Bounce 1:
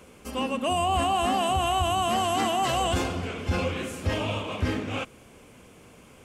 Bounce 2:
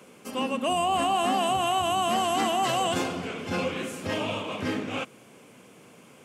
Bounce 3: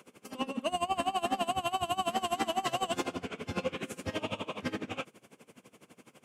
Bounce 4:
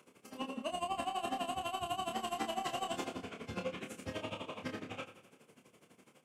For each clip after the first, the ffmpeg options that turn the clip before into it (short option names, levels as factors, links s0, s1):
-af "highpass=f=130:w=0.5412,highpass=f=130:w=1.3066"
-af "asoftclip=type=tanh:threshold=0.112,aeval=exprs='val(0)*pow(10,-21*(0.5-0.5*cos(2*PI*12*n/s))/20)':c=same"
-filter_complex "[0:a]asplit=2[s0][s1];[s1]adelay=27,volume=0.501[s2];[s0][s2]amix=inputs=2:normalize=0,aecho=1:1:89|178|267|356|445:0.211|0.112|0.0594|0.0315|0.0167,volume=0.447"